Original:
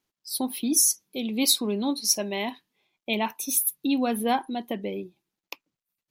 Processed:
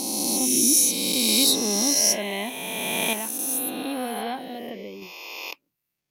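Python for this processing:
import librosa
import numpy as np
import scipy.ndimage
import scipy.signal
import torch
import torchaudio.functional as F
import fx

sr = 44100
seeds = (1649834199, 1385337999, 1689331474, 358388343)

y = fx.spec_swells(x, sr, rise_s=2.89)
y = fx.dynamic_eq(y, sr, hz=920.0, q=4.2, threshold_db=-40.0, ratio=4.0, max_db=-5)
y = fx.comb_fb(y, sr, f0_hz=250.0, decay_s=0.91, harmonics='all', damping=0.0, mix_pct=50, at=(3.13, 5.02))
y = F.gain(torch.from_numpy(y), -2.5).numpy()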